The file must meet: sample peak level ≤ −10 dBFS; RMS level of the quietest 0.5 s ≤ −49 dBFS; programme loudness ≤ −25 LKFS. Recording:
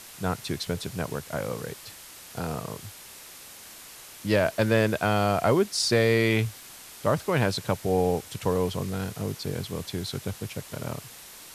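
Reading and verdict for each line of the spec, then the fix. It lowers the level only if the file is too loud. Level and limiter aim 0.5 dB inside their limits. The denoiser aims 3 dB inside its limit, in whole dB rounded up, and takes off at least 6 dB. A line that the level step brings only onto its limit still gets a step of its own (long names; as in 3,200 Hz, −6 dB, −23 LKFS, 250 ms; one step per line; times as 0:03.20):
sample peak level −7.5 dBFS: out of spec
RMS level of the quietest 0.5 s −46 dBFS: out of spec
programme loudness −27.0 LKFS: in spec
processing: broadband denoise 6 dB, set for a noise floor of −46 dBFS
brickwall limiter −10.5 dBFS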